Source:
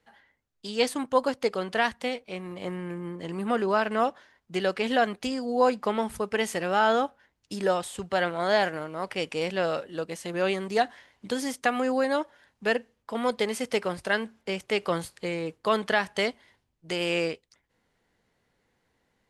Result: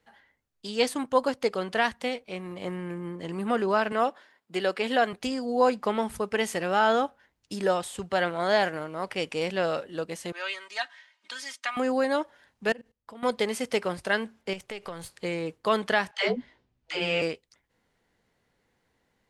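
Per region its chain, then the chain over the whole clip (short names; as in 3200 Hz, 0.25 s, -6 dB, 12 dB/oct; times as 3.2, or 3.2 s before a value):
3.92–5.13 HPF 230 Hz + notch 6100 Hz, Q 7.9
10.32–11.77 HPF 1400 Hz + air absorption 66 m + comb 3.2 ms, depth 77%
12.69–13.23 low shelf 160 Hz +9.5 dB + level quantiser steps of 22 dB + overloaded stage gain 17 dB
14.53–15.1 half-wave gain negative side -3 dB + bell 290 Hz -7 dB 0.34 oct + compressor 4:1, threshold -34 dBFS
16.11–17.22 LPF 4900 Hz + doubler 16 ms -3.5 dB + dispersion lows, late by 0.138 s, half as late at 330 Hz
whole clip: dry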